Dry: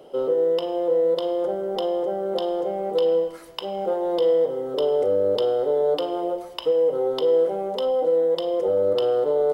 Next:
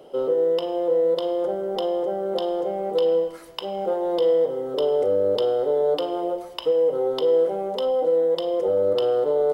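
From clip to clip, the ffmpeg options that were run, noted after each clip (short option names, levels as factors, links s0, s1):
-af anull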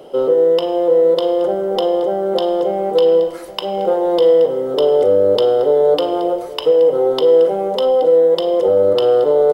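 -af "aecho=1:1:824:0.133,volume=2.51"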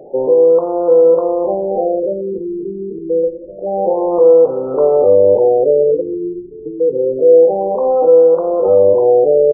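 -filter_complex "[0:a]asplit=2[s0][s1];[s1]adelay=22,volume=0.299[s2];[s0][s2]amix=inputs=2:normalize=0,afftfilt=real='re*lt(b*sr/1024,430*pow(1500/430,0.5+0.5*sin(2*PI*0.27*pts/sr)))':imag='im*lt(b*sr/1024,430*pow(1500/430,0.5+0.5*sin(2*PI*0.27*pts/sr)))':win_size=1024:overlap=0.75,volume=1.26"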